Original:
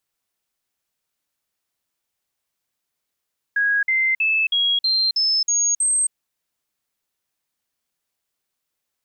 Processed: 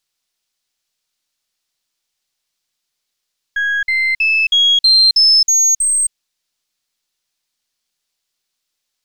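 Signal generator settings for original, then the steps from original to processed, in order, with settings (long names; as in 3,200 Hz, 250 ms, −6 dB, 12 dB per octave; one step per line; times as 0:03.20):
stepped sweep 1,650 Hz up, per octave 3, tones 8, 0.27 s, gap 0.05 s −16 dBFS
gain on one half-wave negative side −3 dB
parametric band 4,600 Hz +11 dB 1.9 octaves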